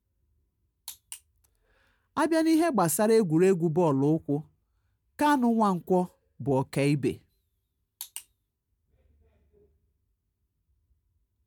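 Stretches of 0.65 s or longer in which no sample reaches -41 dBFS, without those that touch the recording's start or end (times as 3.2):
1.17–2.17
4.41–5.19
7.17–8.01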